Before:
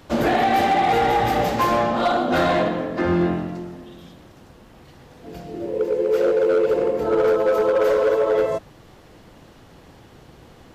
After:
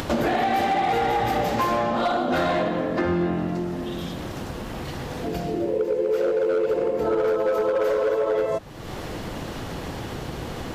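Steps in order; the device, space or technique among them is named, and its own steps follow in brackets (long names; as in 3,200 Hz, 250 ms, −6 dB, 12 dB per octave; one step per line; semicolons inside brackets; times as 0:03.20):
upward and downward compression (upward compression, threshold −23 dBFS; downward compressor, threshold −23 dBFS, peak gain reduction 7.5 dB)
level +3 dB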